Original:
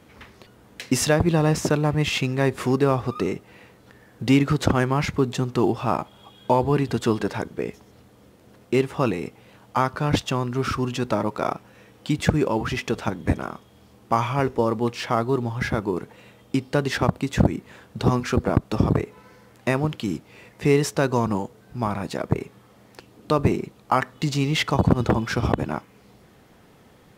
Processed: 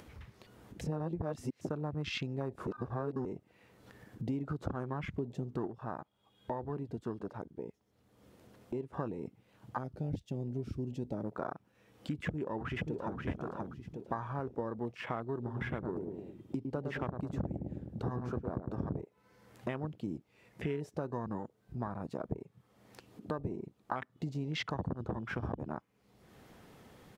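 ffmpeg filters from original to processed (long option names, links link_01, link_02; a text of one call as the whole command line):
ffmpeg -i in.wav -filter_complex "[0:a]asettb=1/sr,asplit=3[link_01][link_02][link_03];[link_01]atrim=end=9.784[link_04];[link_02]atrim=start=9.78:end=11.32,asetpts=PTS-STARTPTS,afade=type=in:duration=0.004:curve=qsin,afade=type=out:start_time=1.536:duration=0.004:curve=qsin,equalizer=frequency=1100:width=1:gain=-14[link_05];[link_03]atrim=start=11.316[link_06];[link_04][link_05]acrossfade=duration=0.004:curve1=hsin:curve2=qsin[link_07];[link_07][link_06]acrossfade=duration=0.004:curve1=qsin:curve2=hsin,asplit=2[link_08][link_09];[link_09]afade=type=in:start_time=12.23:duration=0.01,afade=type=out:start_time=13.23:duration=0.01,aecho=0:1:530|1060|1590|2120:0.562341|0.196819|0.0688868|0.0241104[link_10];[link_08][link_10]amix=inputs=2:normalize=0,asettb=1/sr,asplit=3[link_11][link_12][link_13];[link_11]atrim=end=15.354[link_14];[link_12]atrim=start=15.35:end=19.01,asetpts=PTS-STARTPTS,afade=type=in:duration=0.004:curve=qsin,afade=type=out:start_time=3.656:duration=0.004:curve=qsin,asplit=2[link_15][link_16];[link_16]adelay=106,lowpass=frequency=820:poles=1,volume=-5dB,asplit=2[link_17][link_18];[link_18]adelay=106,lowpass=frequency=820:poles=1,volume=0.54,asplit=2[link_19][link_20];[link_20]adelay=106,lowpass=frequency=820:poles=1,volume=0.54,asplit=2[link_21][link_22];[link_22]adelay=106,lowpass=frequency=820:poles=1,volume=0.54,asplit=2[link_23][link_24];[link_24]adelay=106,lowpass=frequency=820:poles=1,volume=0.54,asplit=2[link_25][link_26];[link_26]adelay=106,lowpass=frequency=820:poles=1,volume=0.54,asplit=2[link_27][link_28];[link_28]adelay=106,lowpass=frequency=820:poles=1,volume=0.54[link_29];[link_15][link_17][link_19][link_21][link_23][link_25][link_27][link_29]amix=inputs=8:normalize=0,atrim=end_sample=161406[link_30];[link_13]atrim=start=19.006[link_31];[link_14][link_30]acrossfade=duration=0.004:curve1=hsin:curve2=qsin[link_32];[link_32][link_31]acrossfade=duration=0.004:curve1=qsin:curve2=hsin,asplit=7[link_33][link_34][link_35][link_36][link_37][link_38][link_39];[link_33]atrim=end=0.812[link_40];[link_34]atrim=start=0.808:end=1.612,asetpts=PTS-STARTPTS,areverse[link_41];[link_35]atrim=start=1.608:end=2.672[link_42];[link_36]atrim=start=2.668:end=3.252,asetpts=PTS-STARTPTS,areverse[link_43];[link_37]atrim=start=3.248:end=5.672[link_44];[link_38]atrim=start=5.668:end=8.932,asetpts=PTS-STARTPTS,volume=-7dB[link_45];[link_39]atrim=start=8.928[link_46];[link_40][link_41]acrossfade=duration=0.004:curve1=hsin:curve2=hsin[link_47];[link_47][link_42]acrossfade=duration=0.004:curve1=hsin:curve2=hsin[link_48];[link_48][link_43]acrossfade=duration=0.004:curve1=hsin:curve2=hsin[link_49];[link_49][link_44]acrossfade=duration=0.004:curve1=hsin:curve2=hsin[link_50];[link_50][link_45]acrossfade=duration=0.004:curve1=hsin:curve2=hsin[link_51];[link_51][link_46]acrossfade=duration=0.004:curve1=hsin:curve2=hsin,acompressor=threshold=-26dB:ratio=5,afwtdn=0.0178,acompressor=mode=upward:threshold=-32dB:ratio=2.5,volume=-7.5dB" out.wav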